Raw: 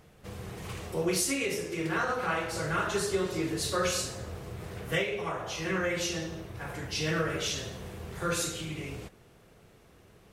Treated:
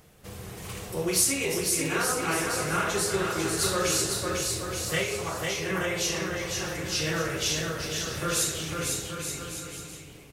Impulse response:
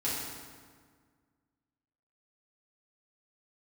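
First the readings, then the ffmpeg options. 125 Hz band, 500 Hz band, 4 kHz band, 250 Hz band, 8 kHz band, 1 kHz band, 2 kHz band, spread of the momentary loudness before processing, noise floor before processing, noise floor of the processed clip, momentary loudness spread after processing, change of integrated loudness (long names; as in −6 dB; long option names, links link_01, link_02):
+2.5 dB, +2.0 dB, +5.5 dB, +2.0 dB, +9.0 dB, +2.5 dB, +3.0 dB, 13 LU, −58 dBFS, −46 dBFS, 12 LU, +4.5 dB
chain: -filter_complex "[0:a]highshelf=frequency=5300:gain=10,asplit=2[link_01][link_02];[link_02]aecho=0:1:500|875|1156|1367|1525:0.631|0.398|0.251|0.158|0.1[link_03];[link_01][link_03]amix=inputs=2:normalize=0"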